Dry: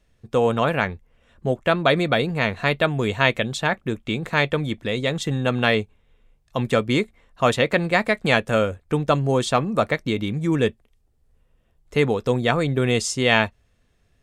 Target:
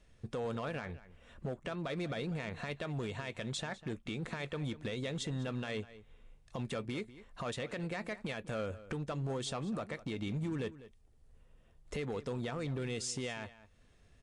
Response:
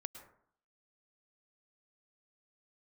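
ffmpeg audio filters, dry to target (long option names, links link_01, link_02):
-filter_complex "[0:a]acompressor=threshold=-36dB:ratio=2.5,alimiter=level_in=4dB:limit=-24dB:level=0:latency=1:release=64,volume=-4dB,asoftclip=type=hard:threshold=-31.5dB,asplit=2[link_01][link_02];[link_02]adelay=198.3,volume=-16dB,highshelf=frequency=4000:gain=-4.46[link_03];[link_01][link_03]amix=inputs=2:normalize=0" -ar 24000 -c:a libmp3lame -b:a 64k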